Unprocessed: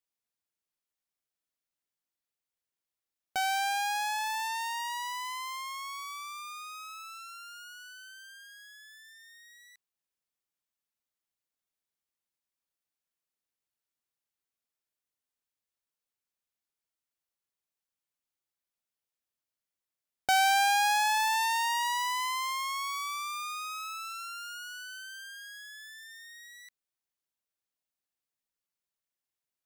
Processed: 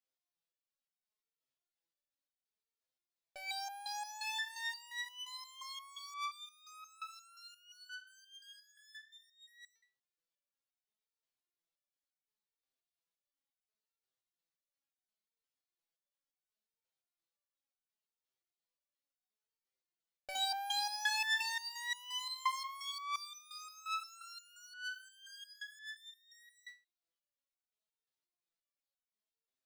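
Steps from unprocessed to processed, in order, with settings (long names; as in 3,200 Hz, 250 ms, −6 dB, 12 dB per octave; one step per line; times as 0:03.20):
graphic EQ with 10 bands 500 Hz +6 dB, 4,000 Hz +6 dB, 16,000 Hz −9 dB
step-sequenced resonator 5.7 Hz 130–750 Hz
level +5.5 dB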